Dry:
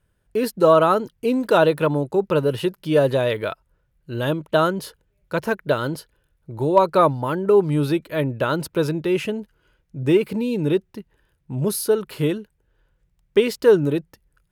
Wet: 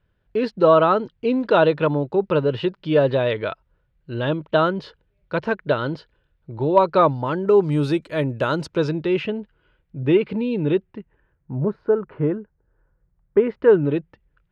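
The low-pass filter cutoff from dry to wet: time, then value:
low-pass filter 24 dB per octave
0:06.81 4,200 Hz
0:07.91 8,300 Hz
0:08.45 8,300 Hz
0:09.35 3,600 Hz
0:10.70 3,600 Hz
0:11.59 1,600 Hz
0:13.38 1,600 Hz
0:13.90 3,200 Hz

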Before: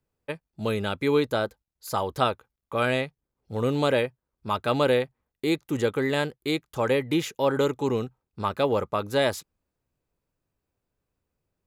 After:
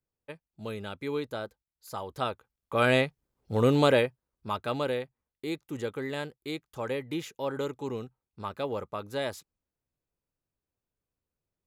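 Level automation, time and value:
0:02.06 −10 dB
0:02.97 +2.5 dB
0:03.74 +2.5 dB
0:04.95 −9 dB

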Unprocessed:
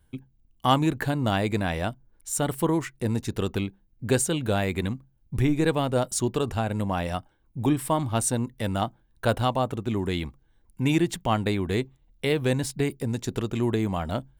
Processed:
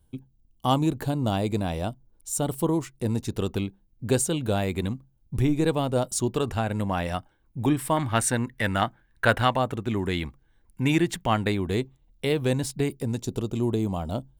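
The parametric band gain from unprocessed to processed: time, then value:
parametric band 1,800 Hz 1 octave
−11.5 dB
from 0:03.01 −5.5 dB
from 0:06.37 +2 dB
from 0:07.97 +13 dB
from 0:09.57 +4 dB
from 0:11.52 −3.5 dB
from 0:13.20 −14.5 dB

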